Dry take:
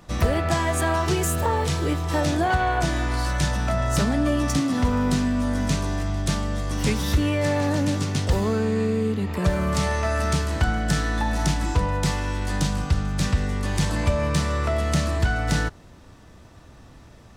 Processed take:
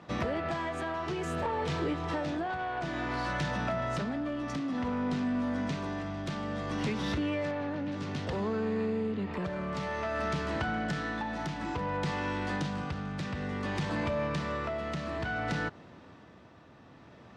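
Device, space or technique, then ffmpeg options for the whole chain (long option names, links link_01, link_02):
AM radio: -filter_complex "[0:a]asettb=1/sr,asplit=3[link_01][link_02][link_03];[link_01]atrim=end=7.514[link_04];[link_02]atrim=start=7.51:end=7.92,asetpts=PTS-STARTPTS,afade=type=in:duration=0.004:curve=qsin,afade=type=out:start_time=0.406:duration=0.004:curve=qsin,acrossover=split=4200[link_05][link_06];[link_06]acompressor=threshold=-53dB:ratio=4:attack=1:release=60[link_07];[link_05][link_07]amix=inputs=2:normalize=0[link_08];[link_03]atrim=start=7.916[link_09];[link_04][link_08]acrossfade=duration=0.004:curve1=hsin:curve2=qsin[link_10];[link_10][link_09]acrossfade=duration=0.004:curve1=qsin:curve2=hsin,highpass=150,lowpass=3300,acompressor=threshold=-26dB:ratio=6,asoftclip=type=tanh:threshold=-23.5dB,tremolo=f=0.57:d=0.36"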